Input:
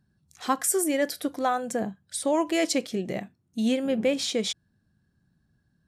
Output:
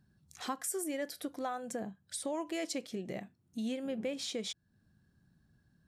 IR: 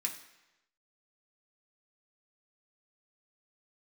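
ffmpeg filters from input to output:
-af "acompressor=threshold=-44dB:ratio=2"

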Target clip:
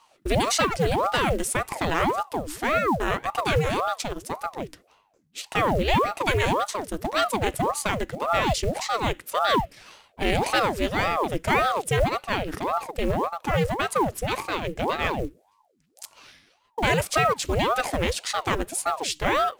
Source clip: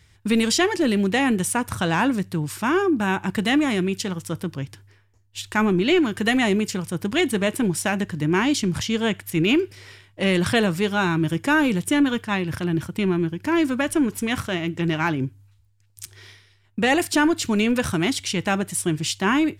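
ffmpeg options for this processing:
ffmpeg -i in.wav -af "bandreject=frequency=50:width_type=h:width=6,bandreject=frequency=100:width_type=h:width=6,bandreject=frequency=150:width_type=h:width=6,acrusher=bits=7:mode=log:mix=0:aa=0.000001,aeval=exprs='val(0)*sin(2*PI*590*n/s+590*0.75/1.8*sin(2*PI*1.8*n/s))':channel_layout=same" out.wav

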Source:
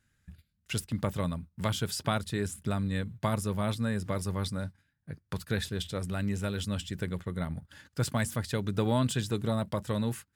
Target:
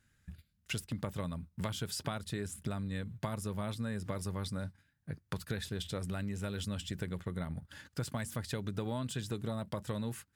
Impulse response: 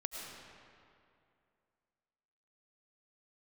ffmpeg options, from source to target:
-af "acompressor=threshold=-35dB:ratio=6,volume=1dB"

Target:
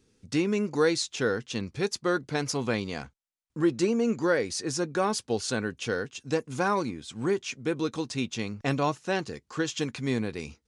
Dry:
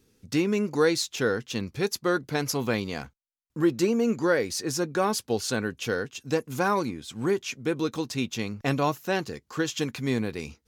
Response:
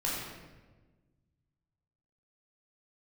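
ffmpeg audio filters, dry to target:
-af "aresample=22050,aresample=44100,volume=-1.5dB"

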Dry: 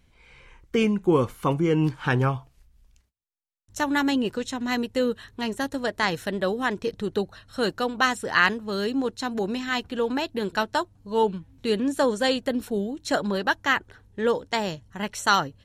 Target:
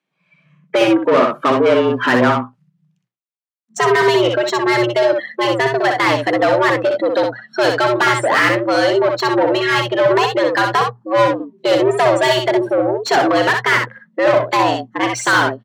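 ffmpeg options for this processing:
ffmpeg -i in.wav -filter_complex "[0:a]afftdn=noise_reduction=30:noise_floor=-37,adynamicequalizer=threshold=0.0178:dfrequency=320:dqfactor=1.1:tfrequency=320:tqfactor=1.1:attack=5:release=100:ratio=0.375:range=2:mode=cutabove:tftype=bell,asplit=2[link_01][link_02];[link_02]highpass=frequency=720:poles=1,volume=30dB,asoftclip=type=tanh:threshold=-5.5dB[link_03];[link_01][link_03]amix=inputs=2:normalize=0,lowpass=frequency=1900:poles=1,volume=-6dB,asplit=2[link_04][link_05];[link_05]aecho=0:1:62|75:0.596|0.133[link_06];[link_04][link_06]amix=inputs=2:normalize=0,afreqshift=120" out.wav

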